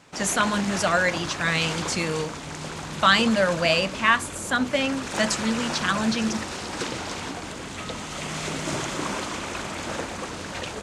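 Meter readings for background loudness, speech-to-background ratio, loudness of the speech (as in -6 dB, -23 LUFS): -31.5 LUFS, 8.0 dB, -23.5 LUFS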